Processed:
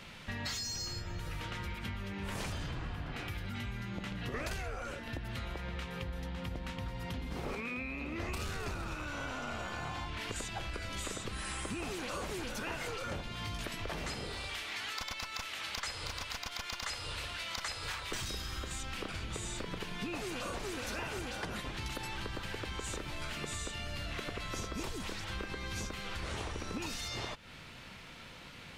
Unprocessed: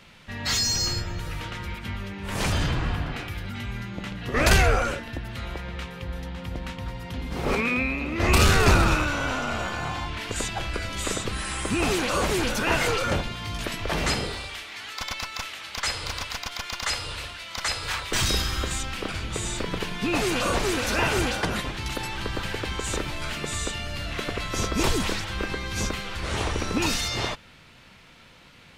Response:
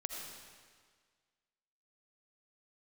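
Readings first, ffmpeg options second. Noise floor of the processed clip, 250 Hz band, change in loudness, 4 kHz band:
−50 dBFS, −12.5 dB, −13.0 dB, −11.5 dB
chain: -af "acompressor=threshold=-37dB:ratio=12,volume=1dB"

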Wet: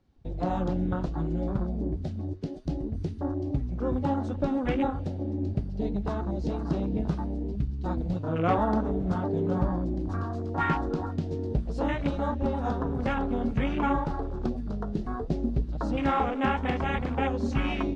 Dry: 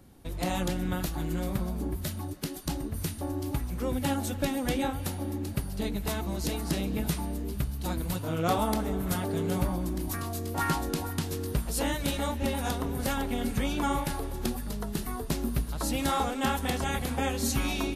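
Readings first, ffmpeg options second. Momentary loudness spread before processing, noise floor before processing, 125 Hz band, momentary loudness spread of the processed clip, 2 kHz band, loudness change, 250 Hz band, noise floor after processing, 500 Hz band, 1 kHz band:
6 LU, −37 dBFS, +2.0 dB, 6 LU, −0.5 dB, +1.5 dB, +2.5 dB, −35 dBFS, +2.5 dB, +2.0 dB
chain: -af "lowpass=frequency=5800:width=0.5412,lowpass=frequency=5800:width=1.3066,afwtdn=0.0158,flanger=delay=2:depth=9.1:regen=80:speed=0.64:shape=triangular,volume=7dB"

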